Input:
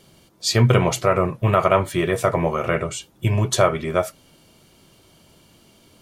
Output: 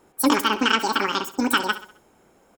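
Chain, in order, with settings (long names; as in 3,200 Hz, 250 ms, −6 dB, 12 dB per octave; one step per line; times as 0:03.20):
on a send: repeating echo 153 ms, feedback 48%, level −14.5 dB
on the sum: wrong playback speed 33 rpm record played at 78 rpm
one half of a high-frequency compander decoder only
level −2.5 dB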